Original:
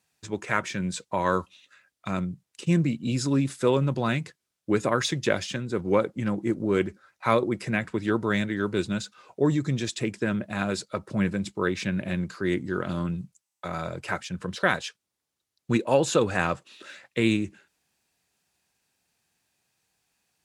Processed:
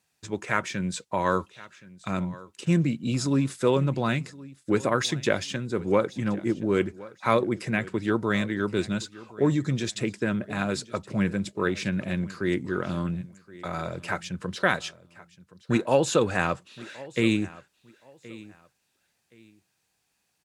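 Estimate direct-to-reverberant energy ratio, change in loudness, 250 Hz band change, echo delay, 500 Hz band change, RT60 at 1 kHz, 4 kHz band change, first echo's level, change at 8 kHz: none, 0.0 dB, 0.0 dB, 1.071 s, 0.0 dB, none, 0.0 dB, -20.0 dB, 0.0 dB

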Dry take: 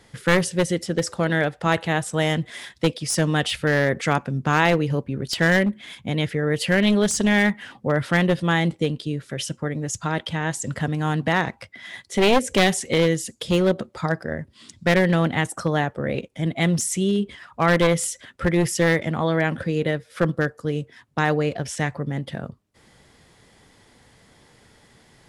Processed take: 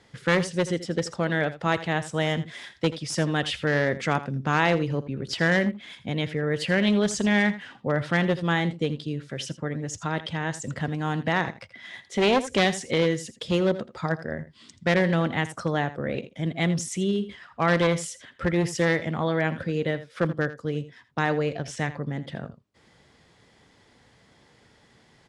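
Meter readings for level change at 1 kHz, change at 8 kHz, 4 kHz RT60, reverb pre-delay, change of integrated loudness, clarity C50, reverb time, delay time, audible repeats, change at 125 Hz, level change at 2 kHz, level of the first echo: -3.5 dB, -7.5 dB, none, none, -3.5 dB, none, none, 82 ms, 1, -4.0 dB, -3.5 dB, -15.0 dB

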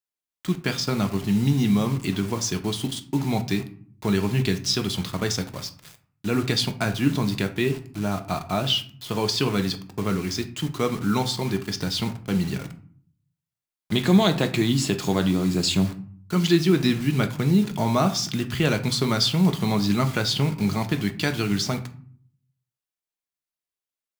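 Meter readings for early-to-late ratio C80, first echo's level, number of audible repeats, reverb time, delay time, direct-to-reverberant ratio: 18.5 dB, none, none, 0.50 s, none, 6.5 dB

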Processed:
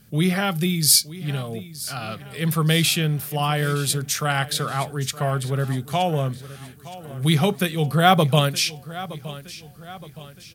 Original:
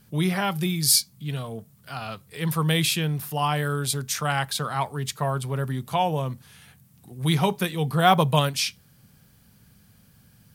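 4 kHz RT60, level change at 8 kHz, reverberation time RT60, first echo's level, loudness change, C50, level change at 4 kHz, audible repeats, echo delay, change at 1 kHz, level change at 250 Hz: none, +3.5 dB, none, -16.5 dB, +3.0 dB, none, +3.5 dB, 3, 0.918 s, +1.0 dB, +3.5 dB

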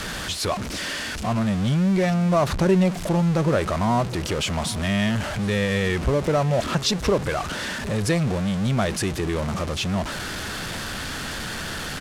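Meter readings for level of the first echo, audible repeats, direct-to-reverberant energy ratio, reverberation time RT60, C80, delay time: -20.0 dB, 1, none, none, none, 0.761 s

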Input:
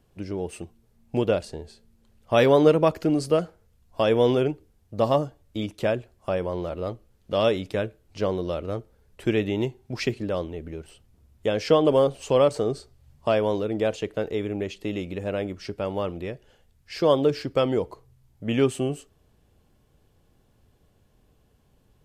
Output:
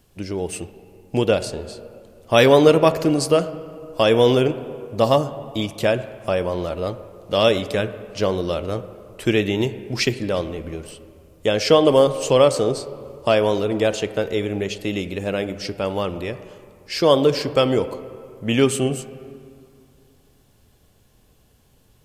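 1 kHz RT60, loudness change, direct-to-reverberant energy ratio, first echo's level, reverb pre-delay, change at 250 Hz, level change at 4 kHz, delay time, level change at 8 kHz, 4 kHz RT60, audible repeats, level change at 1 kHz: 2.4 s, +5.0 dB, 12.0 dB, none, 7 ms, +4.5 dB, +9.5 dB, none, +12.0 dB, 1.5 s, none, +5.5 dB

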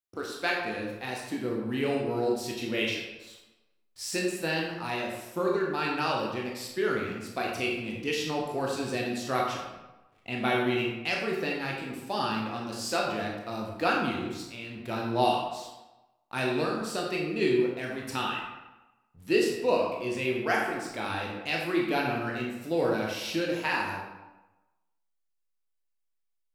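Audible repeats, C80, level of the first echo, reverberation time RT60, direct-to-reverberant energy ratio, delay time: none, 4.5 dB, none, 1.1 s, -2.0 dB, none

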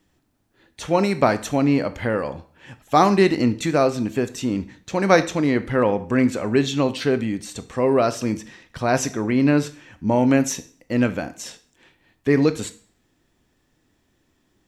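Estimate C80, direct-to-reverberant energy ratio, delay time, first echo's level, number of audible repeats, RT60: 20.0 dB, 11.5 dB, none, none, none, 0.50 s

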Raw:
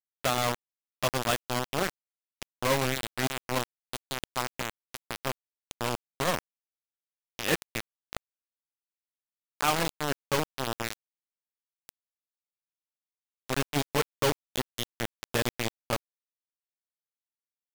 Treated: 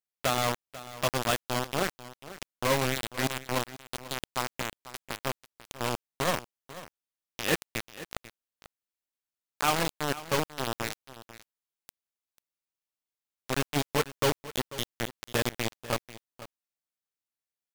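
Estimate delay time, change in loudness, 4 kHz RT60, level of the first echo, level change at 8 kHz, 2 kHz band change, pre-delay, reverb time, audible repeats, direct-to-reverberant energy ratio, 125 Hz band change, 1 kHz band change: 0.492 s, 0.0 dB, none, -16.0 dB, 0.0 dB, 0.0 dB, none, none, 1, none, 0.0 dB, 0.0 dB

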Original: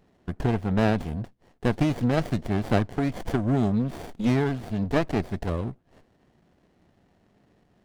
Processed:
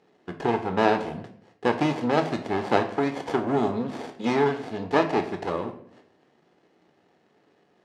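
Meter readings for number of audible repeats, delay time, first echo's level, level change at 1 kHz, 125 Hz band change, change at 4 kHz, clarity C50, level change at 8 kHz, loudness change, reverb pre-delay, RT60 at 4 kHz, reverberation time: none, none, none, +7.0 dB, -9.0 dB, +3.0 dB, 11.0 dB, n/a, +0.5 dB, 12 ms, 0.50 s, 0.65 s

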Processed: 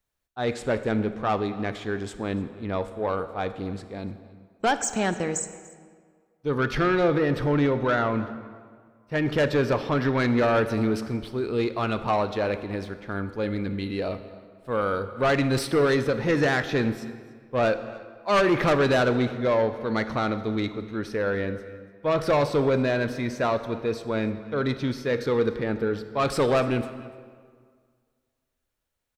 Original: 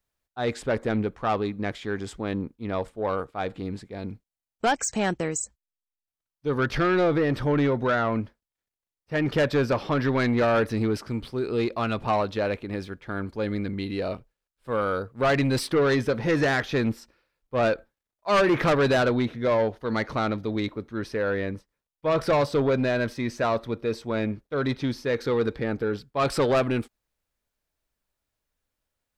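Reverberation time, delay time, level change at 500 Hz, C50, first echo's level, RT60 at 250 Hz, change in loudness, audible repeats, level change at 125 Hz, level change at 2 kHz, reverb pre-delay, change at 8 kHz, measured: 1.8 s, 0.292 s, +0.5 dB, 11.5 dB, -21.5 dB, 1.8 s, +0.5 dB, 1, +0.5 dB, +0.5 dB, 26 ms, 0.0 dB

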